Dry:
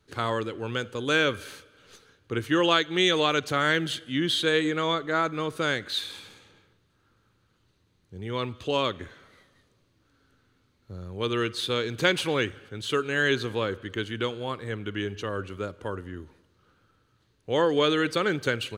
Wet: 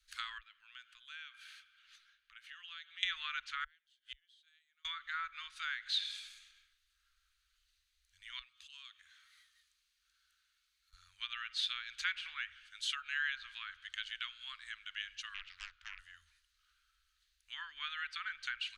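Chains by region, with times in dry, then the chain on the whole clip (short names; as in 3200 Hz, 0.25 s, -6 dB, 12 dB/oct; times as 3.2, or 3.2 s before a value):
0.38–3.03 three-band isolator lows -15 dB, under 180 Hz, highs -16 dB, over 3700 Hz + compressor 2.5:1, threshold -44 dBFS
3.64–4.85 flipped gate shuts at -23 dBFS, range -37 dB + air absorption 51 m
8.39–10.93 notch 2000 Hz, Q 28 + compressor 2:1, threshold -53 dBFS + HPF 150 Hz 6 dB/oct
15.34–15.99 running mean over 5 samples + Doppler distortion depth 1 ms
whole clip: treble ducked by the level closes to 1800 Hz, closed at -22 dBFS; inverse Chebyshev band-stop 100–600 Hz, stop band 50 dB; passive tone stack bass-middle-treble 6-0-2; gain +13.5 dB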